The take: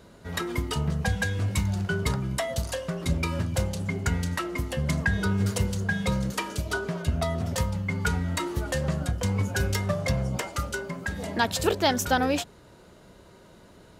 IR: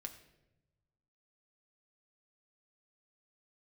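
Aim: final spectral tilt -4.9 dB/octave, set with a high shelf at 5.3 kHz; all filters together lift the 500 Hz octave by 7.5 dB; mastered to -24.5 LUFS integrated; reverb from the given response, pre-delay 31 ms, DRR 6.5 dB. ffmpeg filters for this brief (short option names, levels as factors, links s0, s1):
-filter_complex "[0:a]equalizer=f=500:t=o:g=9,highshelf=f=5300:g=7,asplit=2[s0][s1];[1:a]atrim=start_sample=2205,adelay=31[s2];[s1][s2]afir=irnorm=-1:irlink=0,volume=0.708[s3];[s0][s3]amix=inputs=2:normalize=0,volume=0.944"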